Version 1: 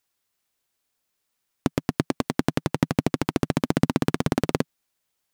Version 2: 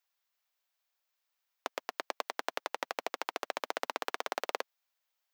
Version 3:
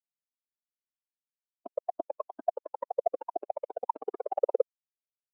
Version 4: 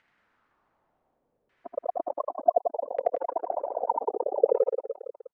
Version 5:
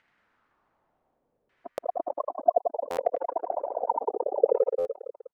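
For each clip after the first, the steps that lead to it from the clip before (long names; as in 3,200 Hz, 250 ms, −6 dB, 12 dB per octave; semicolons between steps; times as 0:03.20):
high-pass filter 570 Hz 24 dB per octave; parametric band 9,400 Hz −9.5 dB 0.69 octaves; level −4.5 dB
fuzz pedal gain 37 dB, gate −46 dBFS; bit reduction 7 bits; every bin expanded away from the loudest bin 4 to 1
upward compression, threshold −43 dBFS; auto-filter low-pass saw down 0.67 Hz 430–2,000 Hz; on a send: reverse bouncing-ball delay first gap 80 ms, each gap 1.25×, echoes 5
buffer that repeats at 0:01.71/0:02.90/0:04.78, samples 512, times 5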